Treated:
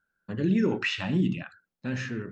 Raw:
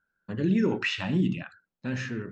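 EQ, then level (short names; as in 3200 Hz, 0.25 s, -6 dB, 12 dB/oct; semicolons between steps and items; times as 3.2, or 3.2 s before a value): notch 960 Hz, Q 29; 0.0 dB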